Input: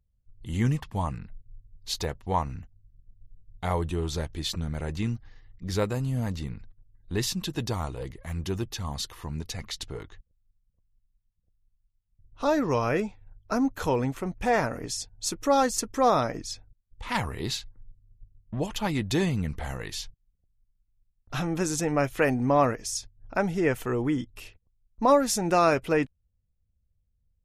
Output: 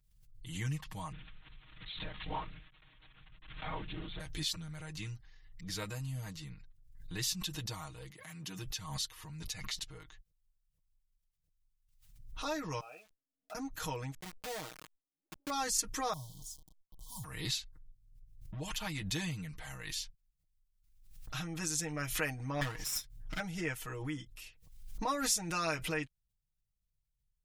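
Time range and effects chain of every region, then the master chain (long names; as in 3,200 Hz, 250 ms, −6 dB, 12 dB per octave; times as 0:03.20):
0:01.12–0:04.20: spike at every zero crossing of −22 dBFS + low-pass filter 2,900 Hz 6 dB per octave + linear-prediction vocoder at 8 kHz whisper
0:08.10–0:08.59: high-pass filter 140 Hz 24 dB per octave + upward compression, threshold −39 dBFS
0:12.80–0:13.55: formant filter a + notch comb filter 1,100 Hz + centre clipping without the shift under −54 dBFS
0:14.14–0:15.50: resonant band-pass 320 Hz, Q 0.67 + centre clipping without the shift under −29.5 dBFS
0:16.13–0:17.24: drawn EQ curve 140 Hz 0 dB, 400 Hz −22 dB, 890 Hz −17 dB, 2,000 Hz −6 dB, 3,400 Hz −29 dB, 6,500 Hz −6 dB, 13,000 Hz +4 dB + bit-depth reduction 8 bits, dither none + linear-phase brick-wall band-stop 1,100–3,000 Hz
0:22.61–0:23.40: lower of the sound and its delayed copy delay 0.54 ms + high-shelf EQ 10,000 Hz +2 dB
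whole clip: guitar amp tone stack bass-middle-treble 5-5-5; comb filter 6.4 ms, depth 98%; background raised ahead of every attack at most 60 dB per second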